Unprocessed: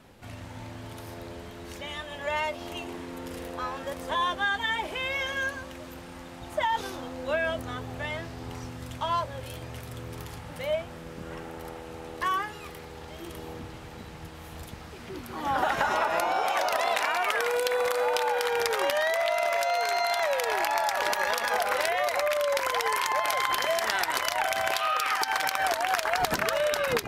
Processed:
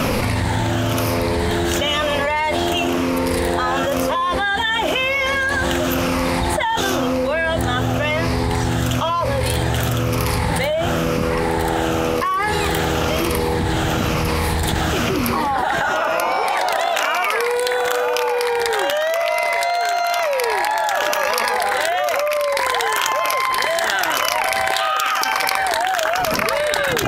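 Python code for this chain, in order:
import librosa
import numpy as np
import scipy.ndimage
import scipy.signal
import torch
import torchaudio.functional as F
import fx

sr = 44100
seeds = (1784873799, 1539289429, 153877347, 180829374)

y = fx.spec_ripple(x, sr, per_octave=0.9, drift_hz=-0.99, depth_db=7)
y = fx.env_flatten(y, sr, amount_pct=100)
y = y * librosa.db_to_amplitude(2.0)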